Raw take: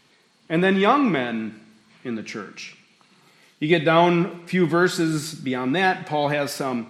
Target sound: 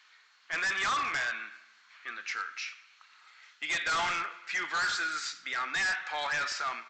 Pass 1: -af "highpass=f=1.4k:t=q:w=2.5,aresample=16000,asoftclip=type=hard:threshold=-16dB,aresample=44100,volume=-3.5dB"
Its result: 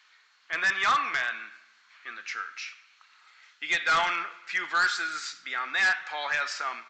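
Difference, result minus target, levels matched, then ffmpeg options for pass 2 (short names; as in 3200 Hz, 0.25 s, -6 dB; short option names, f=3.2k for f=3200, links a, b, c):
hard clip: distortion -6 dB
-af "highpass=f=1.4k:t=q:w=2.5,aresample=16000,asoftclip=type=hard:threshold=-24dB,aresample=44100,volume=-3.5dB"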